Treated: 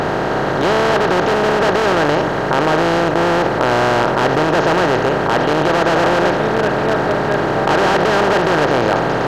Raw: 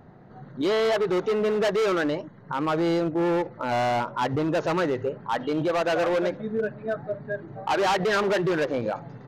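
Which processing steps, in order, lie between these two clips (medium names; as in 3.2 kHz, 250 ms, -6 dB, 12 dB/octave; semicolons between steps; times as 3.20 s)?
spectral levelling over time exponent 0.2; mains buzz 50 Hz, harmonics 28, -36 dBFS -4 dB/octave; trim +1 dB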